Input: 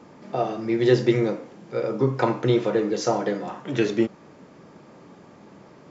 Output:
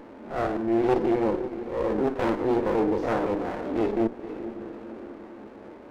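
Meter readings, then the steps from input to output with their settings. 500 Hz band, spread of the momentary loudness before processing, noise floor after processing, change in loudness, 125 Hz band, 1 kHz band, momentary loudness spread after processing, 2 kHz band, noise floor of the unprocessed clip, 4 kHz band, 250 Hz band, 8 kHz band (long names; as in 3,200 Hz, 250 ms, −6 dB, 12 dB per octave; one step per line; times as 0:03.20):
−2.0 dB, 10 LU, −45 dBFS, −2.5 dB, −9.5 dB, 0.0 dB, 18 LU, −3.5 dB, −50 dBFS, −10.5 dB, −1.5 dB, can't be measured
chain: spectrum averaged block by block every 50 ms
low-pass filter 1,400 Hz 12 dB per octave
mains-hum notches 60/120/180/240/300/360/420/480 Hz
on a send: feedback delay with all-pass diffusion 487 ms, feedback 46%, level −15 dB
on the sum: asymmetric clip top −21.5 dBFS
linear-phase brick-wall high-pass 200 Hz
in parallel at −2 dB: downward compressor, threshold −38 dBFS, peak gain reduction 19 dB
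on the sum: echo ahead of the sound 38 ms −16 dB
transient designer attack −7 dB, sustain −2 dB
windowed peak hold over 17 samples
level +2.5 dB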